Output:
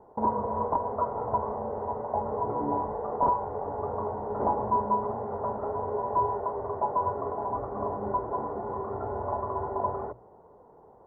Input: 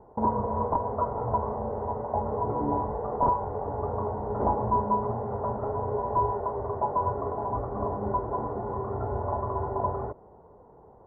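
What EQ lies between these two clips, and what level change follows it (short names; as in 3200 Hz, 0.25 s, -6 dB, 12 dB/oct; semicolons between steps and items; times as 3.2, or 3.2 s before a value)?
low shelf 170 Hz -8.5 dB; notches 60/120 Hz; 0.0 dB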